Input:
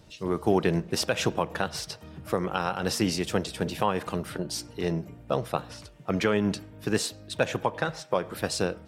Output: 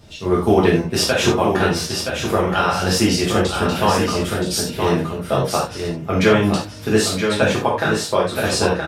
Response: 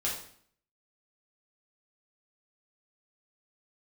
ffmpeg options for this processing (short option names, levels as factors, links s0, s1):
-filter_complex "[0:a]asettb=1/sr,asplit=3[s0][s1][s2];[s0]atrim=end=4.314[s3];[s1]atrim=start=4.31:end=4.99,asetpts=PTS-STARTPTS,afade=t=in:d=0.004:c=qsin,afade=t=out:st=0.676:d=0.004:c=qsin,highshelf=f=9900:g=7.5[s4];[s2]atrim=start=4.986[s5];[s3][s4]acrossfade=d=0.004:c1=hsin:c2=qsin[s6];[s6][s5]acrossfade=d=0.004:c1=qsin:c2=hsin,aecho=1:1:972:0.501[s7];[1:a]atrim=start_sample=2205,afade=t=out:st=0.15:d=0.01,atrim=end_sample=7056[s8];[s7][s8]afir=irnorm=-1:irlink=0,volume=1.78"